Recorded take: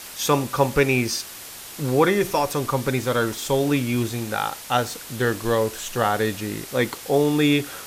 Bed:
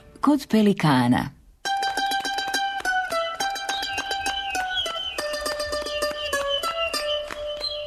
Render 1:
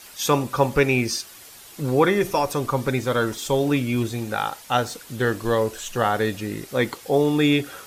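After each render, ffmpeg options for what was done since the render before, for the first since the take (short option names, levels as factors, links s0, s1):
-af "afftdn=nr=8:nf=-39"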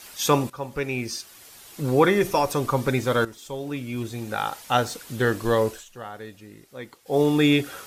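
-filter_complex "[0:a]asplit=5[s0][s1][s2][s3][s4];[s0]atrim=end=0.5,asetpts=PTS-STARTPTS,afade=t=out:st=0.496:d=0.004:c=hsin:silence=0.158489[s5];[s1]atrim=start=0.5:end=3.25,asetpts=PTS-STARTPTS,afade=t=in:d=1.49:silence=0.158489,afade=t=out:st=2.746:d=0.004:c=hsin:silence=0.223872[s6];[s2]atrim=start=3.25:end=5.85,asetpts=PTS-STARTPTS,afade=t=in:d=1.34:c=qua:silence=0.223872,afade=t=out:st=2.44:d=0.16:silence=0.158489[s7];[s3]atrim=start=5.85:end=7.05,asetpts=PTS-STARTPTS,volume=0.158[s8];[s4]atrim=start=7.05,asetpts=PTS-STARTPTS,afade=t=in:d=0.16:silence=0.158489[s9];[s5][s6][s7][s8][s9]concat=n=5:v=0:a=1"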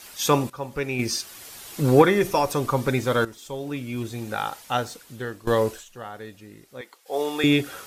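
-filter_complex "[0:a]asettb=1/sr,asplit=3[s0][s1][s2];[s0]atrim=end=0.994[s3];[s1]atrim=start=0.99:end=2.02,asetpts=PTS-STARTPTS,afade=t=in:d=0.004:c=qsin,afade=t=out:st=1.026:d=0.004:c=qsin,acontrast=30[s4];[s2]atrim=start=2.016[s5];[s3][s4]acrossfade=d=0.004:c1=hsin:c2=qsin[s6];[s6][s5]acrossfade=d=0.004:c1=qsin:c2=hsin,asettb=1/sr,asplit=3[s7][s8][s9];[s7]atrim=end=6.814[s10];[s8]atrim=start=6.81:end=7.44,asetpts=PTS-STARTPTS,afade=t=in:d=0.004:c=qsin,afade=t=out:st=0.626:d=0.004:c=qsin,highpass=550[s11];[s9]atrim=start=7.436[s12];[s10][s11]acrossfade=d=0.004:c1=hsin:c2=qsin[s13];[s13][s12]acrossfade=d=0.004:c1=qsin:c2=hsin,asplit=2[s14][s15];[s14]atrim=end=5.47,asetpts=PTS-STARTPTS,afade=t=out:st=4.28:d=1.19:silence=0.16788[s16];[s15]atrim=start=5.47,asetpts=PTS-STARTPTS,afade=t=in:d=0.004:c=hsin:silence=0.16788[s17];[s16][s17]concat=n=2:v=0:a=1"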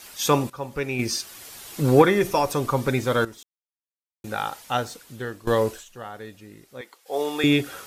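-filter_complex "[0:a]asplit=3[s0][s1][s2];[s0]atrim=end=3.43,asetpts=PTS-STARTPTS,afade=t=out:st=3.426:d=0.004:c=hsin[s3];[s1]atrim=start=3.43:end=4.24,asetpts=PTS-STARTPTS,volume=0[s4];[s2]atrim=start=4.24,asetpts=PTS-STARTPTS,afade=t=in:d=0.004:c=hsin[s5];[s3][s4][s5]concat=n=3:v=0:a=1"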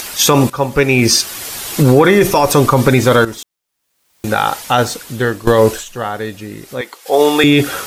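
-af "acompressor=mode=upward:threshold=0.01:ratio=2.5,alimiter=level_in=6.31:limit=0.891:release=50:level=0:latency=1"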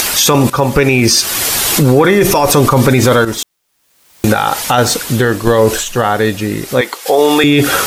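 -filter_complex "[0:a]asplit=2[s0][s1];[s1]acompressor=threshold=0.126:ratio=6,volume=1.12[s2];[s0][s2]amix=inputs=2:normalize=0,alimiter=level_in=1.78:limit=0.891:release=50:level=0:latency=1"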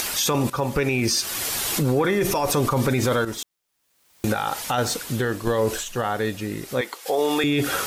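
-af "volume=0.251"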